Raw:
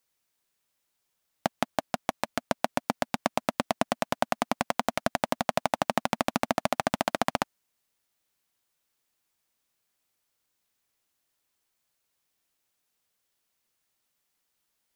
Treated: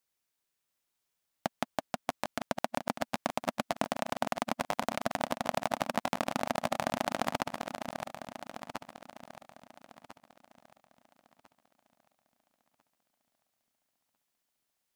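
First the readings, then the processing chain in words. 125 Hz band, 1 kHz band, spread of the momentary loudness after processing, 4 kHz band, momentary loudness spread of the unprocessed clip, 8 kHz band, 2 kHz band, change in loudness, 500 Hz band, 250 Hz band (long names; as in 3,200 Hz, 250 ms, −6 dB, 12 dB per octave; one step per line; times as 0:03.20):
−4.5 dB, −4.5 dB, 12 LU, −4.5 dB, 4 LU, −4.5 dB, −4.5 dB, −5.0 dB, −4.5 dB, −4.5 dB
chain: feedback delay that plays each chunk backwards 674 ms, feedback 53%, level −6.5 dB
level −5.5 dB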